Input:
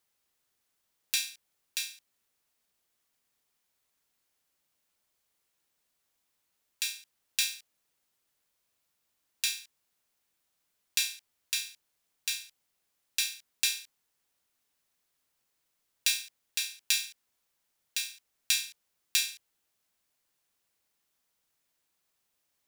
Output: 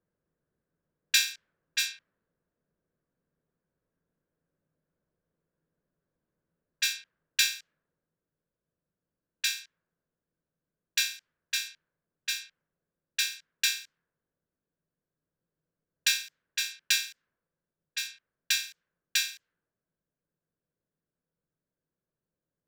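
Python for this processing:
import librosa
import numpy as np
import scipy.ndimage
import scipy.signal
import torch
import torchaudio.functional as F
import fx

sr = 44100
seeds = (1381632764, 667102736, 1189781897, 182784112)

y = fx.env_lowpass(x, sr, base_hz=550.0, full_db=-30.5)
y = fx.graphic_eq_31(y, sr, hz=(160, 500, 800, 1600, 10000), db=(11, 3, -9, 10, -11))
y = fx.rider(y, sr, range_db=10, speed_s=2.0)
y = F.gain(torch.from_numpy(y), 4.5).numpy()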